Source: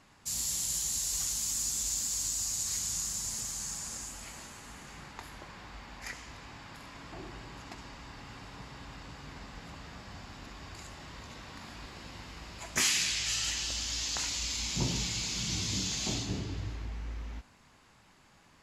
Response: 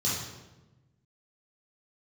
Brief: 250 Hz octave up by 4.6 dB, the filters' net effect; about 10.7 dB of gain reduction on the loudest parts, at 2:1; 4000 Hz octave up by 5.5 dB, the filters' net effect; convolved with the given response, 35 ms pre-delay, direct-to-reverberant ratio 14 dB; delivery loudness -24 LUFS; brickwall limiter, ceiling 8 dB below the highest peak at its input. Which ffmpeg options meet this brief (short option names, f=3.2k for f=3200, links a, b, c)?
-filter_complex "[0:a]equalizer=f=250:t=o:g=6,equalizer=f=4k:t=o:g=7,acompressor=threshold=-41dB:ratio=2,alimiter=level_in=6dB:limit=-24dB:level=0:latency=1,volume=-6dB,asplit=2[a][b];[1:a]atrim=start_sample=2205,adelay=35[c];[b][c]afir=irnorm=-1:irlink=0,volume=-22.5dB[d];[a][d]amix=inputs=2:normalize=0,volume=15.5dB"